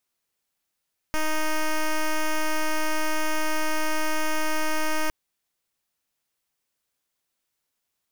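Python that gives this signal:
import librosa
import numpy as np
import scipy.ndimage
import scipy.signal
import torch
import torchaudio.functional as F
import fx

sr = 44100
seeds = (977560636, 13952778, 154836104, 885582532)

y = fx.pulse(sr, length_s=3.96, hz=311.0, level_db=-23.0, duty_pct=8)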